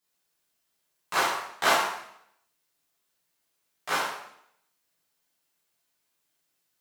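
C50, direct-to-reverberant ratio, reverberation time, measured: 2.0 dB, -9.0 dB, 0.70 s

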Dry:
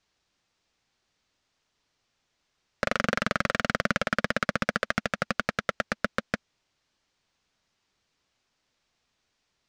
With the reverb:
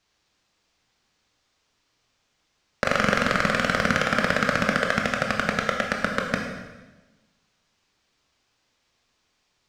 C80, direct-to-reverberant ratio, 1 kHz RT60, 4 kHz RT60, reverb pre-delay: 6.0 dB, 1.0 dB, 1.1 s, 1.1 s, 17 ms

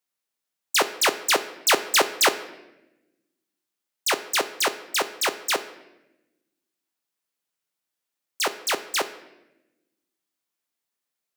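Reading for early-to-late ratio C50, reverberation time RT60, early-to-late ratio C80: 13.5 dB, 0.95 s, 15.5 dB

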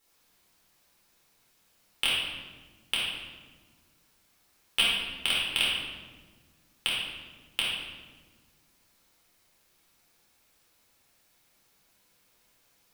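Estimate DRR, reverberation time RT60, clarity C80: -7.0 dB, 1.4 s, 2.0 dB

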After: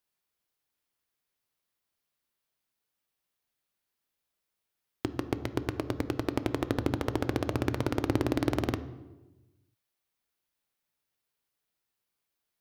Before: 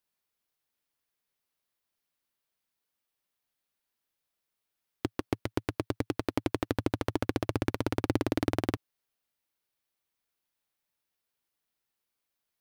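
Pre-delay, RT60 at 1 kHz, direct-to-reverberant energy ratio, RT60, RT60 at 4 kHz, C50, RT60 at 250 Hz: 3 ms, 1.0 s, 11.5 dB, 1.1 s, 0.80 s, 14.0 dB, 1.5 s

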